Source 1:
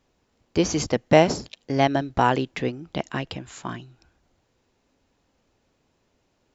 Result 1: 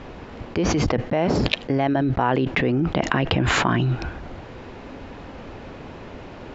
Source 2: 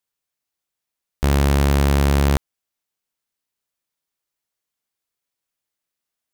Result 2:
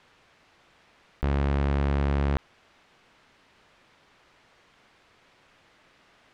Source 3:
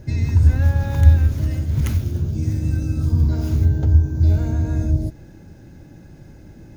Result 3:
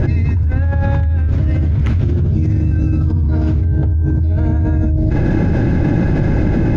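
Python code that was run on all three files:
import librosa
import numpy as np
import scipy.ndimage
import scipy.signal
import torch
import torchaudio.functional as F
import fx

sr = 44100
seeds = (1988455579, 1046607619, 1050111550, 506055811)

y = scipy.signal.sosfilt(scipy.signal.butter(2, 2500.0, 'lowpass', fs=sr, output='sos'), x)
y = fx.env_flatten(y, sr, amount_pct=100)
y = y * librosa.db_to_amplitude(-8.5)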